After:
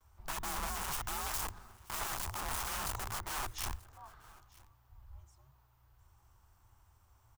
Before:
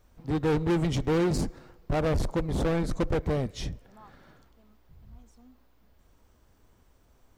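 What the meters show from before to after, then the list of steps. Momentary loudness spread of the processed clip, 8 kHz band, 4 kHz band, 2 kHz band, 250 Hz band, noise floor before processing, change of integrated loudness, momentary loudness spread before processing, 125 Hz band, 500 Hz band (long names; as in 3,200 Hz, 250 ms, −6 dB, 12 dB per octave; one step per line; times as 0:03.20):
18 LU, +5.5 dB, −1.5 dB, −3.0 dB, −25.0 dB, −63 dBFS, −9.5 dB, 10 LU, −18.0 dB, −22.0 dB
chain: noise gate with hold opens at −54 dBFS
wrap-around overflow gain 29 dB
frequency shifter −120 Hz
octave-band graphic EQ 125/250/500/1,000/2,000/4,000 Hz −9/−10/−12/+6/−5/−6 dB
single-tap delay 936 ms −23.5 dB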